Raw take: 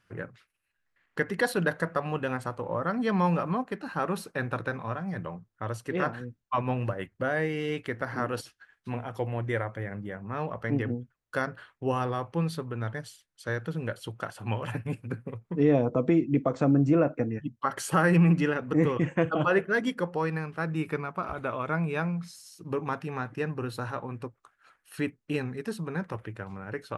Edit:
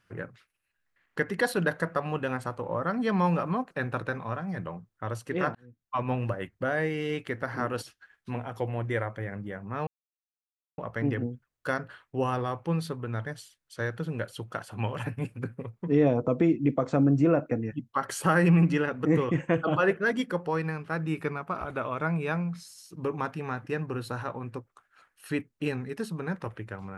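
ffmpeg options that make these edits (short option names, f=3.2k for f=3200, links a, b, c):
-filter_complex "[0:a]asplit=4[a][b][c][d];[a]atrim=end=3.712[e];[b]atrim=start=4.298:end=6.14,asetpts=PTS-STARTPTS,afade=t=out:st=1.838:d=0.004:c=hsin[f];[c]atrim=start=6.14:end=10.46,asetpts=PTS-STARTPTS,afade=t=in:d=0.53,afade=t=out:st=4.316:d=0.004:c=hsin,apad=pad_dur=0.91[g];[d]atrim=start=10.46,asetpts=PTS-STARTPTS,afade=t=in:d=0.004:c=hsin[h];[f][g][h]concat=n=3:v=0:a=1[i];[e][i]acrossfade=d=0.004:c1=hsin:c2=hsin"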